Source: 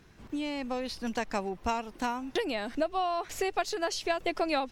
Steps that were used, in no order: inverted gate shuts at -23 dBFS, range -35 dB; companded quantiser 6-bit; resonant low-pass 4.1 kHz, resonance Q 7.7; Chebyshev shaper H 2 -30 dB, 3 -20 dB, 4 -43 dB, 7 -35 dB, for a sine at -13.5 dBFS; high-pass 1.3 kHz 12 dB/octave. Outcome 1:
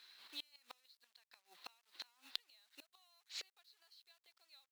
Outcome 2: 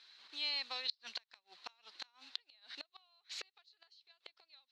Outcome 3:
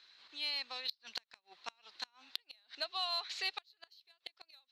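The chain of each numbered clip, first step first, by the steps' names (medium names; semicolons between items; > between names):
resonant low-pass > inverted gate > companded quantiser > high-pass > Chebyshev shaper; Chebyshev shaper > companded quantiser > resonant low-pass > inverted gate > high-pass; high-pass > companded quantiser > resonant low-pass > Chebyshev shaper > inverted gate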